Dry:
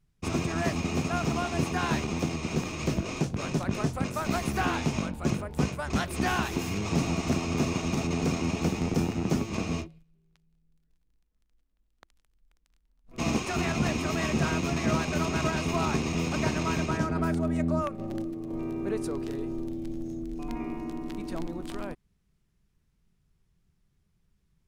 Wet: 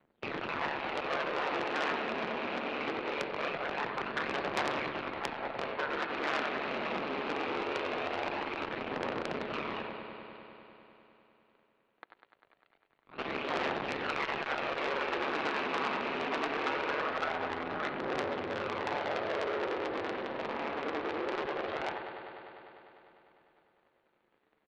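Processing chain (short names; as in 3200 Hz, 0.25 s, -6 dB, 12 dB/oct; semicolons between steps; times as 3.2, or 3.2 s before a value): cycle switcher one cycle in 2, inverted; compressor, threshold -29 dBFS, peak gain reduction 8.5 dB; three-band isolator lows -21 dB, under 270 Hz, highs -22 dB, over 2500 Hz; speakerphone echo 90 ms, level -8 dB; phaser 0.22 Hz, delay 3.5 ms, feedback 49%; HPF 110 Hz 12 dB/oct; ring modulator 72 Hz; steep low-pass 4500 Hz 96 dB/oct; high shelf 3000 Hz +12 dB; multi-head echo 0.1 s, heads first and second, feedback 73%, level -14 dB; core saturation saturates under 3600 Hz; gain +5 dB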